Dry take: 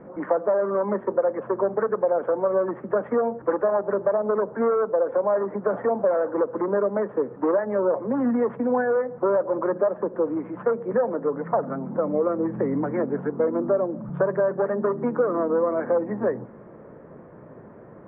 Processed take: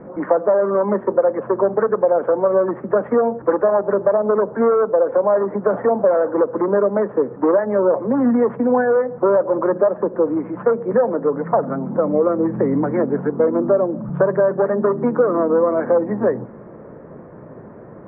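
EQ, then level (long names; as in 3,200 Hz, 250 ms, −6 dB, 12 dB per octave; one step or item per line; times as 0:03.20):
high-frequency loss of the air 310 metres
+7.0 dB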